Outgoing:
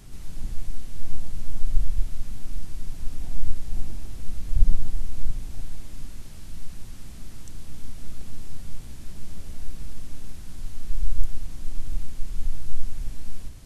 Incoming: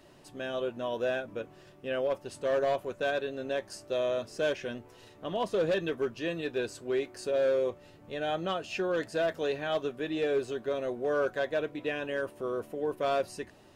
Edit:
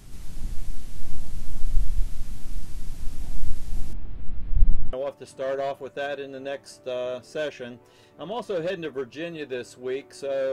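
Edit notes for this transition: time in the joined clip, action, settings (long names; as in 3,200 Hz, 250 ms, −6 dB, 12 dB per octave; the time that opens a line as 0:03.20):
outgoing
0:03.93–0:04.93: high-frequency loss of the air 440 metres
0:04.93: continue with incoming from 0:01.97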